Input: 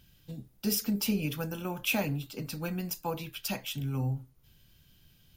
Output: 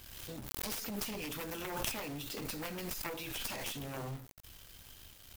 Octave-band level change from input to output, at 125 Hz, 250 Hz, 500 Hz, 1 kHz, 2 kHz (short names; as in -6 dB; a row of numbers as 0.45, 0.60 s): -12.0, -10.5, -5.0, -3.5, -5.0 dB